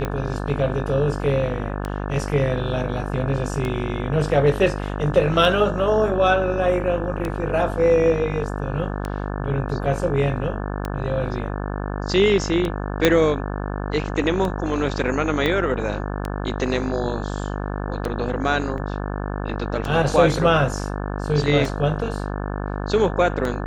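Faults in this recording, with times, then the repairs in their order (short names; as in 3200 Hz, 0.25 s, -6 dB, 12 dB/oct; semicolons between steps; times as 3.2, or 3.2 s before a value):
buzz 50 Hz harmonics 35 -27 dBFS
tick 33 1/3 rpm -13 dBFS
13.05 pop -1 dBFS
15.46 pop -10 dBFS
18.78 gap 2.8 ms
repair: de-click; de-hum 50 Hz, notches 35; interpolate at 18.78, 2.8 ms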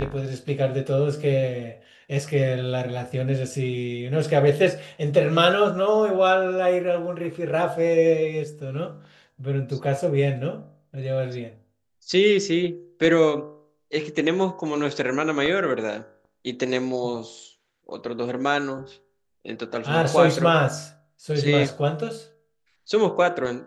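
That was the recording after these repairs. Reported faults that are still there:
13.05 pop
15.46 pop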